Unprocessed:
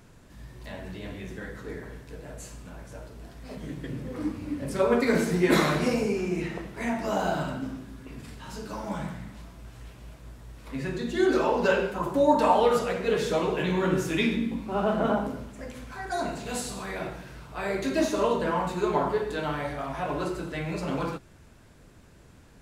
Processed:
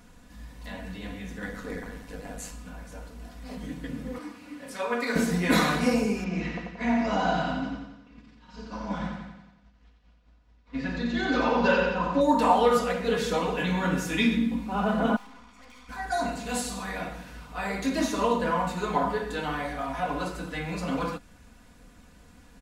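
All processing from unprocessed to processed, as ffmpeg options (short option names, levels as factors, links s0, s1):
-filter_complex "[0:a]asettb=1/sr,asplit=3[s0][s1][s2];[s0]atrim=end=1.424[s3];[s1]atrim=start=1.42:end=2.51,asetpts=PTS-STARTPTS,afade=t=in:d=0.004:c=qsin,afade=t=out:st=1.086:d=0.004:c=qsin,highpass=63,acontrast=66,tremolo=f=100:d=0.824[s4];[s2]atrim=start=2.506[s5];[s3][s4]acrossfade=d=0.004:c1=hsin:c2=qsin[s6];[s6][s5]acrossfade=d=0.004:c1=qsin:c2=hsin,asettb=1/sr,asplit=3[s7][s8][s9];[s7]atrim=end=4.184[s10];[s8]atrim=start=4.18:end=5.16,asetpts=PTS-STARTPTS,afade=t=in:d=0.004:c=qsin,afade=t=out:st=0.976:d=0.004:c=qsin,highpass=f=1000:p=1,highshelf=f=5200:g=-5,asplit=2[s11][s12];[s12]adelay=34,volume=0.282[s13];[s11][s13]amix=inputs=2:normalize=0,atrim=end_sample=43218[s14];[s9]atrim=start=5.156[s15];[s10][s14]acrossfade=d=0.004:c1=hsin:c2=qsin[s16];[s16][s15]acrossfade=d=0.004:c1=qsin:c2=hsin,asettb=1/sr,asplit=3[s17][s18][s19];[s17]atrim=end=6.244[s20];[s18]atrim=start=6.24:end=12.21,asetpts=PTS-STARTPTS,afade=t=in:d=0.004:c=qsin,afade=t=out:st=5.966:d=0.004:c=qsin,lowpass=f=5500:w=0.5412,lowpass=f=5500:w=1.3066,agate=range=0.0224:threshold=0.0224:ratio=3:release=100:detection=peak,aecho=1:1:89|178|267|356|445|534|623:0.596|0.316|0.167|0.0887|0.047|0.0249|0.0132,atrim=end_sample=263277[s21];[s19]atrim=start=12.206[s22];[s20][s21]acrossfade=d=0.004:c1=hsin:c2=qsin[s23];[s23][s22]acrossfade=d=0.004:c1=qsin:c2=hsin,asettb=1/sr,asplit=3[s24][s25][s26];[s24]atrim=end=15.164[s27];[s25]atrim=start=15.16:end=15.89,asetpts=PTS-STARTPTS,afade=t=in:d=0.004:c=qsin,afade=t=out:st=0.726:d=0.004:c=qsin,acrossover=split=440 6900:gain=0.158 1 0.0631[s28][s29][s30];[s28][s29][s30]amix=inputs=3:normalize=0,aecho=1:1:0.9:0.72,atrim=end_sample=32193,aeval=exprs='(tanh(282*val(0)+0.7)-tanh(0.7))/282':c=same[s31];[s26]atrim=start=15.886[s32];[s27][s31]acrossfade=d=0.004:c1=hsin:c2=qsin[s33];[s33][s32]acrossfade=d=0.004:c1=qsin:c2=hsin,equalizer=f=400:t=o:w=0.72:g=-5.5,aecho=1:1:4.1:0.68"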